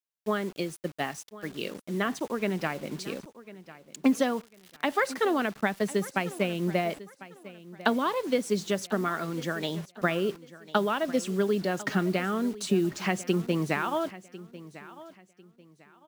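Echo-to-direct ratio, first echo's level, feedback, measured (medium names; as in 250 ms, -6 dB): -17.0 dB, -17.5 dB, 28%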